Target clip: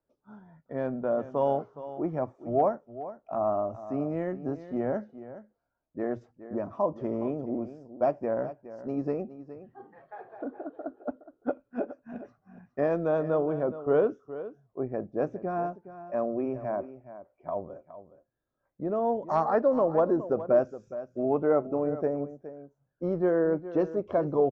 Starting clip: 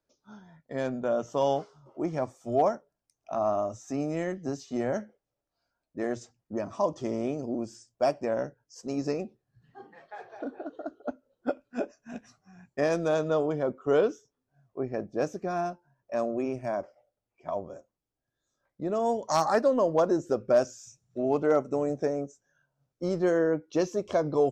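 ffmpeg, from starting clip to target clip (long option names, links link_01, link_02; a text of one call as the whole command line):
ffmpeg -i in.wav -filter_complex "[0:a]lowpass=1400,asplit=2[link_01][link_02];[link_02]aecho=0:1:417:0.2[link_03];[link_01][link_03]amix=inputs=2:normalize=0" out.wav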